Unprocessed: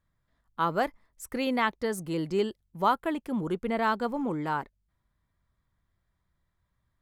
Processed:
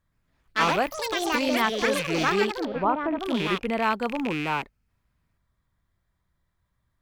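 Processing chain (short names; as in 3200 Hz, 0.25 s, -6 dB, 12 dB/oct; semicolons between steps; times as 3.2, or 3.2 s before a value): rattling part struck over -46 dBFS, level -23 dBFS; echoes that change speed 0.119 s, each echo +5 st, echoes 3; 2.65–3.2 LPF 1100 Hz 12 dB/oct; gain +2 dB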